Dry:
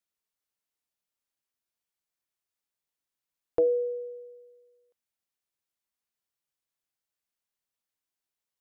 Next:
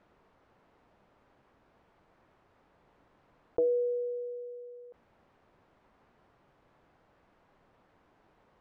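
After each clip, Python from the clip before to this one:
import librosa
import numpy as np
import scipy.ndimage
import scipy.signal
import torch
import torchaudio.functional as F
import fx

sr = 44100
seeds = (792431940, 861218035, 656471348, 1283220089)

y = scipy.signal.sosfilt(scipy.signal.butter(2, 1000.0, 'lowpass', fs=sr, output='sos'), x)
y = fx.env_flatten(y, sr, amount_pct=50)
y = y * librosa.db_to_amplitude(-4.5)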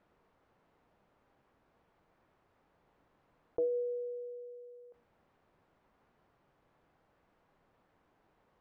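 y = fx.comb_fb(x, sr, f0_hz=160.0, decay_s=0.68, harmonics='odd', damping=0.0, mix_pct=50)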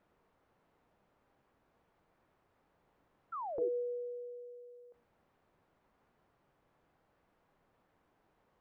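y = fx.spec_paint(x, sr, seeds[0], shape='fall', start_s=3.32, length_s=0.37, low_hz=340.0, high_hz=1400.0, level_db=-38.0)
y = y * librosa.db_to_amplitude(-2.0)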